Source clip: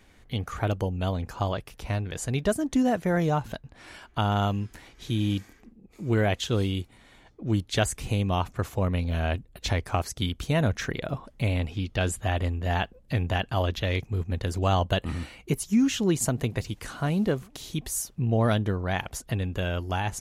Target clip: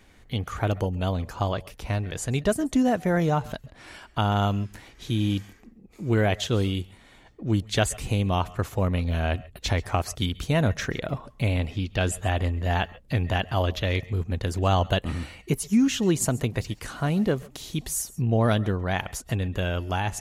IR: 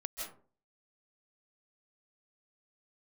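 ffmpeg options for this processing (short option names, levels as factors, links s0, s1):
-filter_complex "[0:a]asplit=2[s0][s1];[1:a]atrim=start_sample=2205,atrim=end_sample=6174[s2];[s1][s2]afir=irnorm=-1:irlink=0,volume=1[s3];[s0][s3]amix=inputs=2:normalize=0,volume=0.708"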